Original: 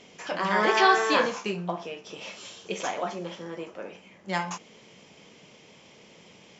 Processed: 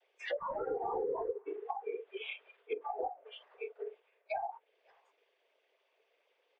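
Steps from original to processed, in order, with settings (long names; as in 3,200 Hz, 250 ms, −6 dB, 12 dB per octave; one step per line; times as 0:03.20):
0:00.74–0:03.31: variable-slope delta modulation 16 kbit/s
Chebyshev high-pass with heavy ripple 430 Hz, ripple 3 dB
high-frequency loss of the air 280 metres
comb filter 6.9 ms, depth 88%
cochlear-implant simulation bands 16
brickwall limiter −20.5 dBFS, peak gain reduction 10.5 dB
soft clipping −22.5 dBFS, distortion −20 dB
single-tap delay 537 ms −16.5 dB
treble cut that deepens with the level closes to 920 Hz, closed at −31.5 dBFS
noise reduction from a noise print of the clip's start 25 dB
downward compressor 3 to 1, threshold −41 dBFS, peak gain reduction 9.5 dB
level +6 dB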